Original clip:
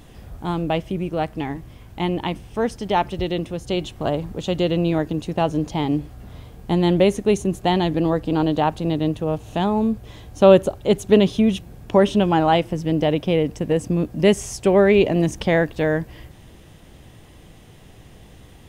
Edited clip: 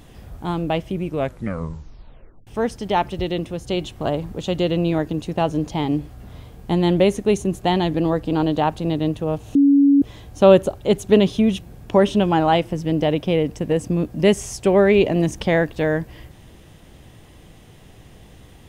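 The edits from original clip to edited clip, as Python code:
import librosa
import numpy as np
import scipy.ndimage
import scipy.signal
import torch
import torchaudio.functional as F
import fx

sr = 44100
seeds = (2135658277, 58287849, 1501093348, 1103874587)

y = fx.edit(x, sr, fx.tape_stop(start_s=1.04, length_s=1.43),
    fx.bleep(start_s=9.55, length_s=0.47, hz=281.0, db=-10.0), tone=tone)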